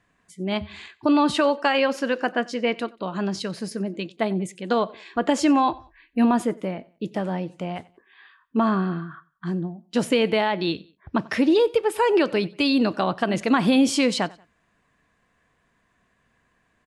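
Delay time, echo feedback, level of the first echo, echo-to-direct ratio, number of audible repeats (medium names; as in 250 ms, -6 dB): 92 ms, 36%, -23.0 dB, -22.5 dB, 2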